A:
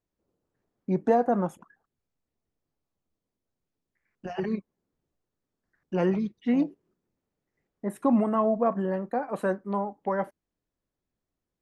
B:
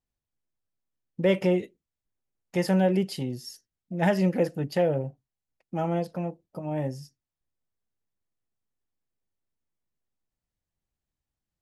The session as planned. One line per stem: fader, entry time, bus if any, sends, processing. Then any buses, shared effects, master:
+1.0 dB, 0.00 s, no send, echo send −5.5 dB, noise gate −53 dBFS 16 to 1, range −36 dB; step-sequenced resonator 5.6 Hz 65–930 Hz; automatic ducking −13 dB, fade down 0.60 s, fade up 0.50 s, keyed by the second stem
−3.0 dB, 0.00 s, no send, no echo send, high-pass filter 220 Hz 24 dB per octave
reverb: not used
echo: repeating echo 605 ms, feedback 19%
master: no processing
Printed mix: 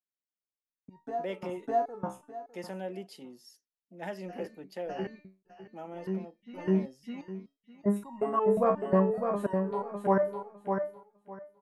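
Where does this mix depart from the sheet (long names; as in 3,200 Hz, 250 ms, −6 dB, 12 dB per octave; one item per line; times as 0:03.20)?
stem A +1.0 dB → +9.5 dB
stem B −3.0 dB → −13.5 dB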